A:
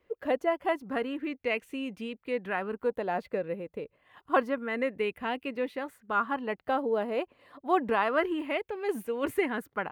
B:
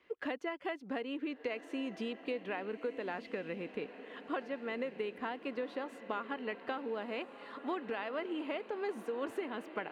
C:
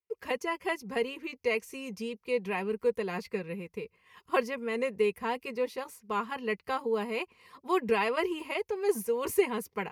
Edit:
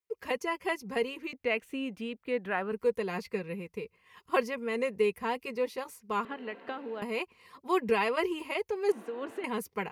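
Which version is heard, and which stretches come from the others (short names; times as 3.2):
C
1.33–2.72 from A
6.25–7.02 from B
8.92–9.44 from B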